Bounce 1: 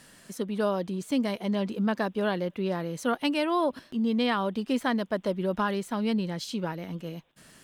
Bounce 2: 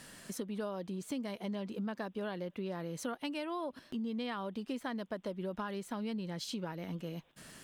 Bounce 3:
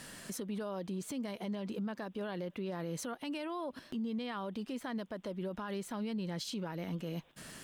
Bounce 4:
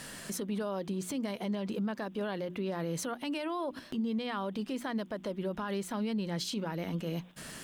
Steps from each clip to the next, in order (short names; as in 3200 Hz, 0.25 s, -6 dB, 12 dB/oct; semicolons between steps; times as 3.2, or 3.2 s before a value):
compressor 4:1, threshold -39 dBFS, peak gain reduction 14.5 dB; gain +1 dB
limiter -35 dBFS, peak gain reduction 9 dB; gain +3.5 dB
notches 60/120/180/240/300/360 Hz; gain +4.5 dB